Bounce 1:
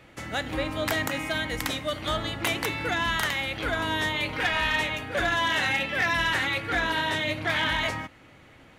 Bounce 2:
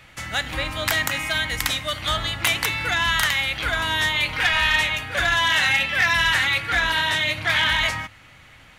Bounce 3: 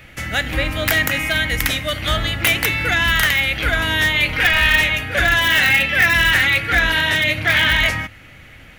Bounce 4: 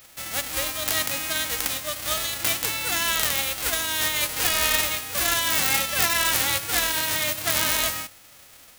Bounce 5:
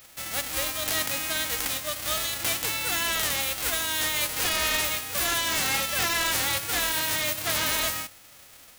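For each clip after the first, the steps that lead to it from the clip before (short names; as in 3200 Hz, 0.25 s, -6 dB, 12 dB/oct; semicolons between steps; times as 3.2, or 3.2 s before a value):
bell 350 Hz -14.5 dB 2.3 oct; notches 50/100 Hz; gain +8.5 dB
in parallel at -9.5 dB: wrapped overs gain 11 dB; on the sum: graphic EQ 125/1000/4000/8000 Hz -3/-11/-7/-8 dB; gain +7.5 dB
spectral whitening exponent 0.1; gain -7.5 dB
overloaded stage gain 20 dB; gain -1 dB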